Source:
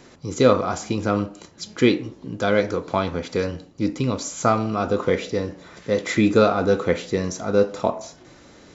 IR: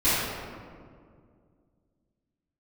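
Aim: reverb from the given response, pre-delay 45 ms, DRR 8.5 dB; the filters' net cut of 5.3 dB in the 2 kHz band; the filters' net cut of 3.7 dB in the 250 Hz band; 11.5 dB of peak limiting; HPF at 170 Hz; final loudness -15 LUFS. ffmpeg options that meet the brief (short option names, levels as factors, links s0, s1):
-filter_complex "[0:a]highpass=170,equalizer=f=250:t=o:g=-3.5,equalizer=f=2000:t=o:g=-7,alimiter=limit=0.158:level=0:latency=1,asplit=2[s0][s1];[1:a]atrim=start_sample=2205,adelay=45[s2];[s1][s2]afir=irnorm=-1:irlink=0,volume=0.0562[s3];[s0][s3]amix=inputs=2:normalize=0,volume=4.47"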